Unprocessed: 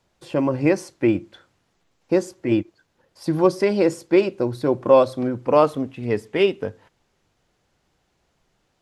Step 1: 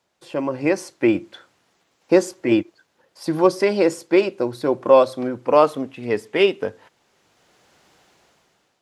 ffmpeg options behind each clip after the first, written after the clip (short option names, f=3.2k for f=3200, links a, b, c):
-af "highpass=f=350:p=1,dynaudnorm=f=250:g=7:m=16dB,volume=-1dB"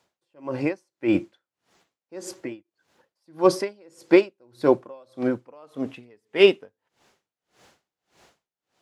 -af "aeval=exprs='val(0)*pow(10,-38*(0.5-0.5*cos(2*PI*1.7*n/s))/20)':c=same,volume=3dB"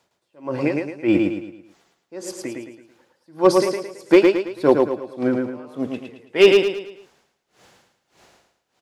-filter_complex "[0:a]asoftclip=type=hard:threshold=-6.5dB,asplit=2[a][b];[b]aecho=0:1:110|220|330|440|550:0.668|0.267|0.107|0.0428|0.0171[c];[a][c]amix=inputs=2:normalize=0,volume=3dB"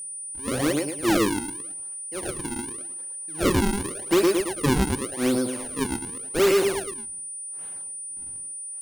-af "acrusher=samples=42:mix=1:aa=0.000001:lfo=1:lforange=67.2:lforate=0.88,aeval=exprs='val(0)+0.0224*sin(2*PI*9300*n/s)':c=same,asoftclip=type=tanh:threshold=-15.5dB"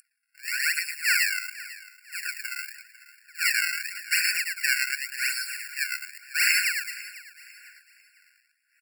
-filter_complex "[0:a]asplit=2[a][b];[b]acrusher=bits=4:mix=0:aa=0.000001,volume=-10.5dB[c];[a][c]amix=inputs=2:normalize=0,aecho=1:1:498|996|1494:0.126|0.0428|0.0146,afftfilt=real='re*eq(mod(floor(b*sr/1024/1400),2),1)':imag='im*eq(mod(floor(b*sr/1024/1400),2),1)':win_size=1024:overlap=0.75,volume=7dB"